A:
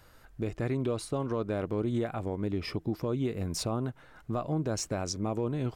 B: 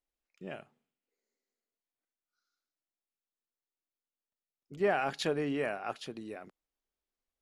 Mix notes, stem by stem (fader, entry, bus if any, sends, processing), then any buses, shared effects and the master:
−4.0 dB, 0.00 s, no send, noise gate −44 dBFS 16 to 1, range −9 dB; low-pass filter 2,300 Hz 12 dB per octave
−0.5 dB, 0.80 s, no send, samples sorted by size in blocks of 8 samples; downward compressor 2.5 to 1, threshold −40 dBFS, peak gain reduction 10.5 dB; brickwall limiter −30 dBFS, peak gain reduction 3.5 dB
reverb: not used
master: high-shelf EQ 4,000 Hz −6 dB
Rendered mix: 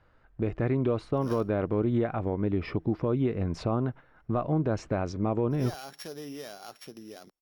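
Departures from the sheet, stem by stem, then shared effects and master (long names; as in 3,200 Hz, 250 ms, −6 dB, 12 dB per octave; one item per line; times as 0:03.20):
stem A −4.0 dB → +4.0 dB
master: missing high-shelf EQ 4,000 Hz −6 dB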